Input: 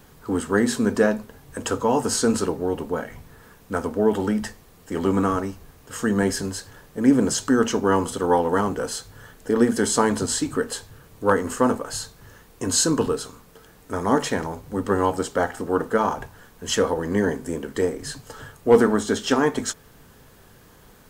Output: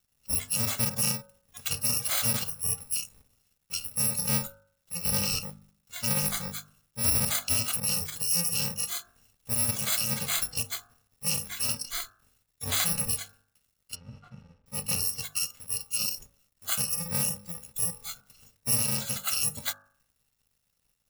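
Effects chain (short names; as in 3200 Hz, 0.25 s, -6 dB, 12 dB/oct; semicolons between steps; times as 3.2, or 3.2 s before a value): FFT order left unsorted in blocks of 128 samples; 15.38–16.88 compressor 2:1, threshold -24 dBFS, peak gain reduction 5.5 dB; limiter -14.5 dBFS, peak gain reduction 10.5 dB; 13.95–14.66 tape spacing loss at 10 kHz 40 dB; crossover distortion -49 dBFS; spectral noise reduction 14 dB; de-hum 50.37 Hz, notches 34; Doppler distortion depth 0.14 ms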